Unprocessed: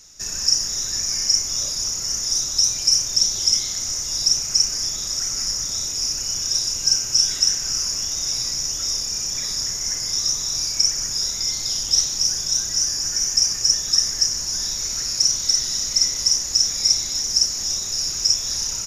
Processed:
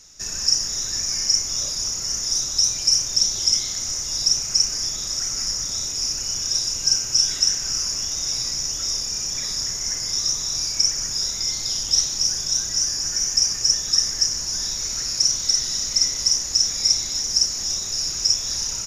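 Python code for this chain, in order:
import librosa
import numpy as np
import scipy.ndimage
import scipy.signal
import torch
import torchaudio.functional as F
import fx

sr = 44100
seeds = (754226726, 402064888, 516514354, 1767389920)

y = fx.high_shelf(x, sr, hz=12000.0, db=-7.5)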